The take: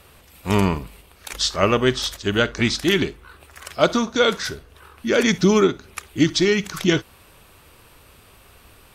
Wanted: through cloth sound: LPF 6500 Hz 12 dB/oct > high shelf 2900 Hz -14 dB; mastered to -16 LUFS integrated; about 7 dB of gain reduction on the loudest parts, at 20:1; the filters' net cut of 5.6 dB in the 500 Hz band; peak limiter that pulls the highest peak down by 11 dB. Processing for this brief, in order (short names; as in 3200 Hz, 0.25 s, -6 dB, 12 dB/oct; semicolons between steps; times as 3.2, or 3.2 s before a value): bell 500 Hz -7 dB; compressor 20:1, threshold -20 dBFS; limiter -21 dBFS; LPF 6500 Hz 12 dB/oct; high shelf 2900 Hz -14 dB; gain +18.5 dB